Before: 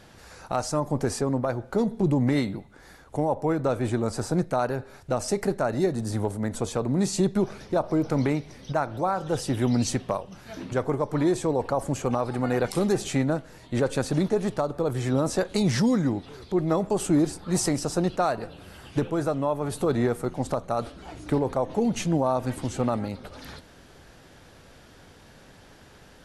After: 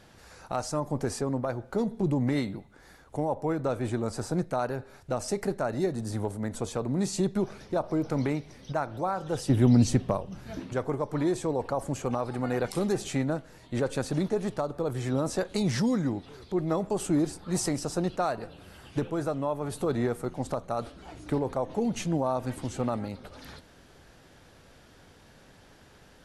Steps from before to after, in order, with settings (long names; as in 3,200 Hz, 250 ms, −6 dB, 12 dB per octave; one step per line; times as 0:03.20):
0:09.49–0:10.60: low-shelf EQ 390 Hz +10 dB
level −4 dB